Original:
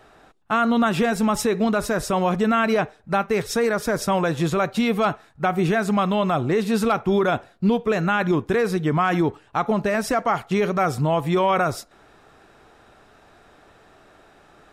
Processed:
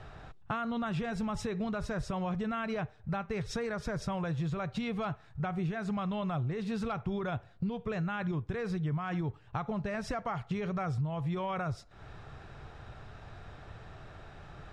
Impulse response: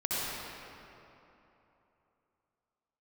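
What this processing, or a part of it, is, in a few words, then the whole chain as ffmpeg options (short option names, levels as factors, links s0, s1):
jukebox: -af "lowpass=5500,lowshelf=f=180:t=q:w=1.5:g=11.5,acompressor=threshold=0.0178:ratio=4"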